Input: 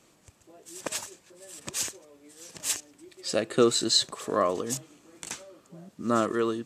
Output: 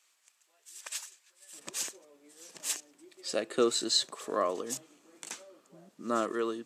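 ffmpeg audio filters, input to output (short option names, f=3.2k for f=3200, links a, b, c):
-af "asetnsamples=n=441:p=0,asendcmd='1.53 highpass f 250',highpass=1.5k,volume=-4.5dB"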